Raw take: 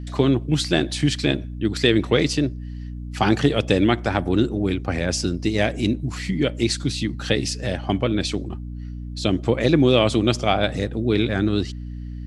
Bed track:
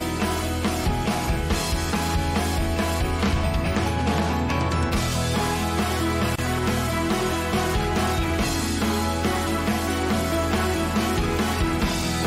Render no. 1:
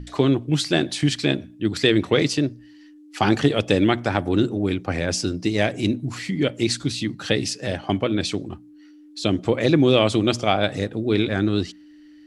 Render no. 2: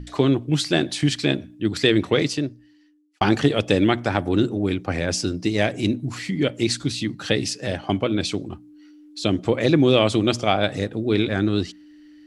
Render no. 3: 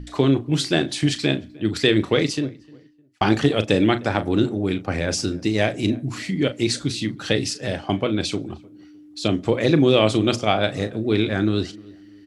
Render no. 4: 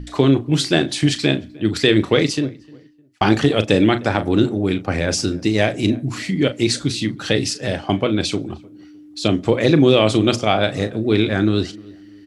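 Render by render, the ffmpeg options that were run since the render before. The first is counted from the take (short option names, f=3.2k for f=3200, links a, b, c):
-af "bandreject=f=60:t=h:w=6,bandreject=f=120:t=h:w=6,bandreject=f=180:t=h:w=6,bandreject=f=240:t=h:w=6"
-filter_complex "[0:a]asettb=1/sr,asplit=3[a][b][c];[a]atrim=end=7.884[d];[b]atrim=start=7.88:end=9.23,asetpts=PTS-STARTPTS,afade=t=in:d=0.004:c=qsin,afade=t=out:st=1.346:d=0.004:c=qsin,bandreject=f=1.8k:w=12[e];[c]atrim=start=9.226[f];[d][e]acrossfade=d=0.004:c1=hsin:c2=qsin[g];[g][f]acrossfade=d=0.004:c1=qsin:c2=hsin,asplit=2[h][i];[h]atrim=end=3.21,asetpts=PTS-STARTPTS,afade=t=out:st=2.05:d=1.16[j];[i]atrim=start=3.21,asetpts=PTS-STARTPTS,afade=t=in:d=0.004:c=hsin[k];[j][k]concat=n=2:v=0:a=1"
-filter_complex "[0:a]asplit=2[a][b];[b]adelay=37,volume=-12dB[c];[a][c]amix=inputs=2:normalize=0,asplit=2[d][e];[e]adelay=305,lowpass=f=1.6k:p=1,volume=-23dB,asplit=2[f][g];[g]adelay=305,lowpass=f=1.6k:p=1,volume=0.32[h];[d][f][h]amix=inputs=3:normalize=0"
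-af "volume=3.5dB,alimiter=limit=-2dB:level=0:latency=1"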